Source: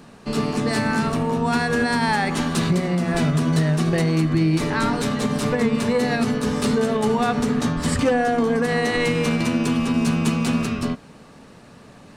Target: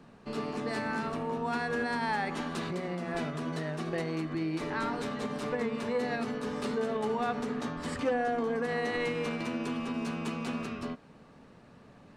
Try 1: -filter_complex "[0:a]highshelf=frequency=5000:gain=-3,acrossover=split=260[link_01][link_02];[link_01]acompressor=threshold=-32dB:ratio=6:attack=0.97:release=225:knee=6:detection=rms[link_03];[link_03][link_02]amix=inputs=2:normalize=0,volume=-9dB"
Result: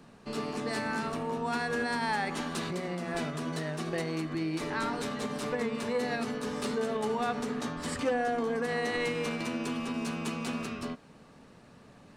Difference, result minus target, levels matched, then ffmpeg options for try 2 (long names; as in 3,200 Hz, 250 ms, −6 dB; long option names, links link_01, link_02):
8,000 Hz band +6.0 dB
-filter_complex "[0:a]highshelf=frequency=5000:gain=-12.5,acrossover=split=260[link_01][link_02];[link_01]acompressor=threshold=-32dB:ratio=6:attack=0.97:release=225:knee=6:detection=rms[link_03];[link_03][link_02]amix=inputs=2:normalize=0,volume=-9dB"